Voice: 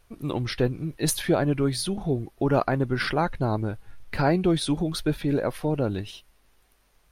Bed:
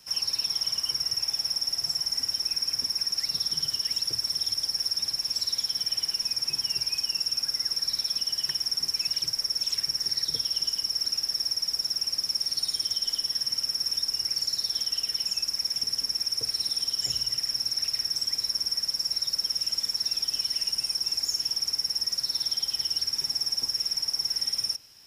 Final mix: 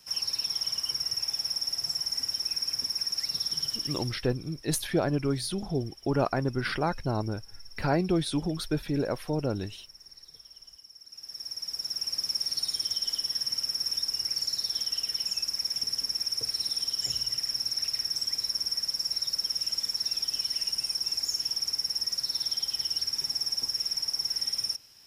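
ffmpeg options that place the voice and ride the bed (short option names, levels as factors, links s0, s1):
-filter_complex "[0:a]adelay=3650,volume=0.631[s0];[1:a]volume=7.94,afade=t=out:st=3.69:d=0.59:silence=0.1,afade=t=in:st=11.07:d=1.17:silence=0.0944061[s1];[s0][s1]amix=inputs=2:normalize=0"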